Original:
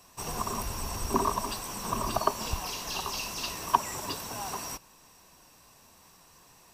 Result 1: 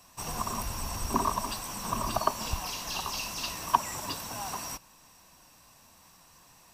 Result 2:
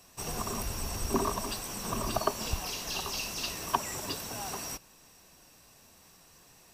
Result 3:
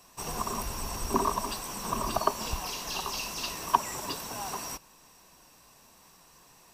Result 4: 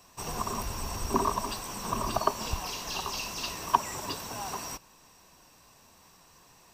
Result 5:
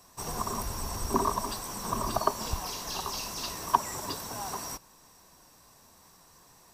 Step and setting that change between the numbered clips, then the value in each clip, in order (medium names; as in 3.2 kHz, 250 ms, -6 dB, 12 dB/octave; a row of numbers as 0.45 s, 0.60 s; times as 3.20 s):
peaking EQ, frequency: 410 Hz, 1 kHz, 93 Hz, 11 kHz, 2.7 kHz